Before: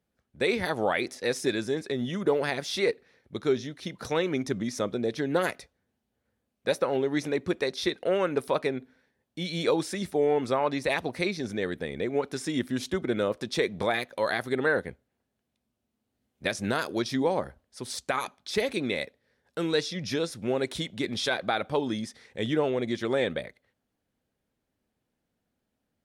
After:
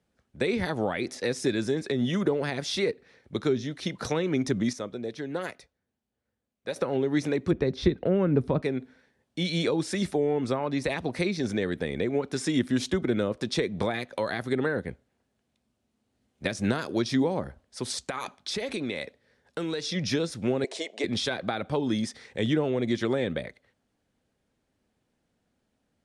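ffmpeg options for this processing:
ffmpeg -i in.wav -filter_complex "[0:a]asplit=3[link_01][link_02][link_03];[link_01]afade=type=out:start_time=7.5:duration=0.02[link_04];[link_02]aemphasis=mode=reproduction:type=riaa,afade=type=in:start_time=7.5:duration=0.02,afade=type=out:start_time=8.61:duration=0.02[link_05];[link_03]afade=type=in:start_time=8.61:duration=0.02[link_06];[link_04][link_05][link_06]amix=inputs=3:normalize=0,asettb=1/sr,asplit=3[link_07][link_08][link_09];[link_07]atrim=end=17.914[link_10];[link_08]atrim=start=17.91:end=19.89,asetpts=PTS-STARTPTS,afade=type=in:duration=0.004:curve=qsin,afade=type=out:start_time=1.976:duration=0.004:curve=qsin,acompressor=threshold=-32dB:ratio=6:attack=3.2:release=140:knee=1:detection=peak[link_11];[link_09]atrim=start=19.886[link_12];[link_10][link_11]acrossfade=duration=0.004:curve1=hsin:curve2=qsin[link_13];[link_13][link_12]acrossfade=duration=0.004:curve1=qsin:curve2=hsin,asettb=1/sr,asplit=3[link_14][link_15][link_16];[link_14]atrim=end=20.644[link_17];[link_15]atrim=start=20.64:end=21.04,asetpts=PTS-STARTPTS,afade=type=in:duration=0.004:curve=qsin,afade=type=out:start_time=0.396:duration=0.004:curve=qsin,highpass=frequency=390:width=0.5412,highpass=frequency=390:width=1.3066,equalizer=frequency=440:width_type=q:width=4:gain=6,equalizer=frequency=670:width_type=q:width=4:gain=10,equalizer=frequency=1400:width_type=q:width=4:gain=-9,equalizer=frequency=3500:width_type=q:width=4:gain=-8,lowpass=frequency=8700:width=0.5412,lowpass=frequency=8700:width=1.3066[link_18];[link_16]atrim=start=21.036[link_19];[link_17][link_18]acrossfade=duration=0.004:curve1=hsin:curve2=qsin[link_20];[link_20][link_19]acrossfade=duration=0.004:curve1=qsin:curve2=hsin,asplit=3[link_21][link_22][link_23];[link_21]atrim=end=4.732[link_24];[link_22]atrim=start=4.728:end=6.762,asetpts=PTS-STARTPTS,volume=-10.5dB[link_25];[link_23]atrim=start=6.758[link_26];[link_24][link_25]acrossfade=duration=0.004:curve1=hsin:curve2=hsin[link_27];[link_27][link_26]acrossfade=duration=0.004:curve1=hsin:curve2=hsin,lowpass=frequency=10000:width=0.5412,lowpass=frequency=10000:width=1.3066,acrossover=split=300[link_28][link_29];[link_29]acompressor=threshold=-33dB:ratio=6[link_30];[link_28][link_30]amix=inputs=2:normalize=0,volume=5dB" out.wav

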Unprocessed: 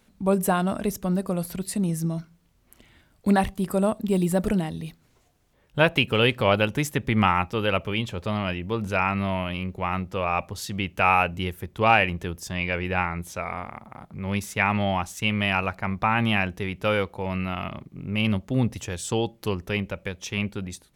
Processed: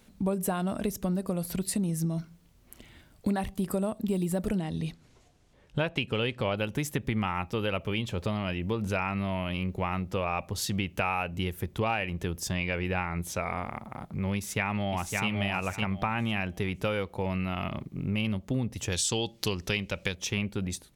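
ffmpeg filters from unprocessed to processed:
ffmpeg -i in.wav -filter_complex "[0:a]asettb=1/sr,asplit=3[link_01][link_02][link_03];[link_01]atrim=end=4.584[link_04];[link_02]atrim=start=4.58:end=6.58,asetpts=PTS-STARTPTS,afade=type=in:duration=0.004:curve=qsin,afade=type=out:start_time=1.996:duration=0.004:curve=qsin,lowpass=8200[link_05];[link_03]atrim=start=6.576[link_06];[link_04][link_05]acrossfade=duration=0.004:curve1=hsin:curve2=qsin[link_07];[link_07][link_06]acrossfade=duration=0.004:curve1=qsin:curve2=hsin,asplit=2[link_08][link_09];[link_09]afade=type=in:start_time=14.36:duration=0.01,afade=type=out:start_time=15.28:duration=0.01,aecho=0:1:560|1120|1680:0.501187|0.100237|0.0200475[link_10];[link_08][link_10]amix=inputs=2:normalize=0,asettb=1/sr,asplit=3[link_11][link_12][link_13];[link_11]atrim=end=18.924[link_14];[link_12]atrim=start=18.92:end=20.15,asetpts=PTS-STARTPTS,afade=type=in:duration=0.004:curve=qsin,afade=type=out:start_time=1.226:duration=0.004:curve=qsin,equalizer=frequency=4800:width=0.56:gain=12.5[link_15];[link_13]atrim=start=20.146[link_16];[link_14][link_15]acrossfade=duration=0.004:curve1=hsin:curve2=qsin[link_17];[link_17][link_16]acrossfade=duration=0.004:curve1=qsin:curve2=hsin,equalizer=frequency=1300:width_type=o:width=1.9:gain=-3,acompressor=threshold=-30dB:ratio=5,volume=3.5dB" out.wav

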